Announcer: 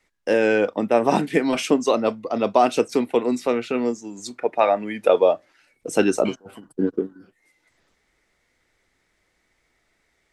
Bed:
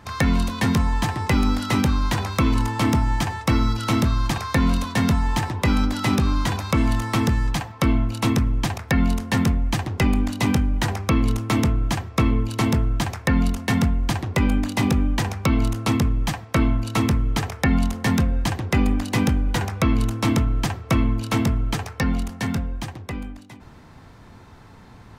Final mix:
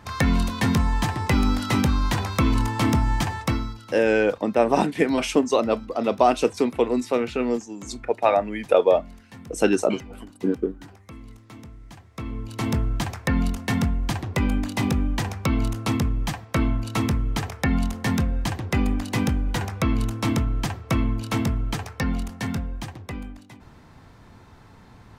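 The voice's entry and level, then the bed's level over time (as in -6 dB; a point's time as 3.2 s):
3.65 s, -1.0 dB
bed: 3.43 s -1 dB
3.96 s -23 dB
11.82 s -23 dB
12.76 s -3 dB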